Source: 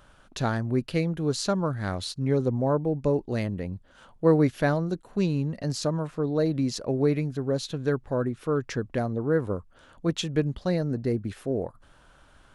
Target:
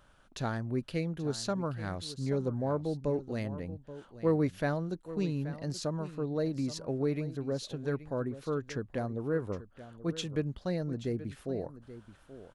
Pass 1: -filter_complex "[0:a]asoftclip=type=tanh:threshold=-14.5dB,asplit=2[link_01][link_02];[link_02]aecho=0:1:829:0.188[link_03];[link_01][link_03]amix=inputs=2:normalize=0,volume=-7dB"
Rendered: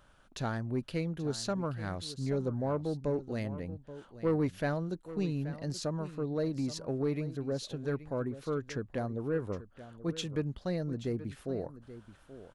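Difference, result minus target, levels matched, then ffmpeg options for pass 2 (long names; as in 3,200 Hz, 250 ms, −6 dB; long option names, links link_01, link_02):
soft clipping: distortion +12 dB
-filter_complex "[0:a]asoftclip=type=tanh:threshold=-7dB,asplit=2[link_01][link_02];[link_02]aecho=0:1:829:0.188[link_03];[link_01][link_03]amix=inputs=2:normalize=0,volume=-7dB"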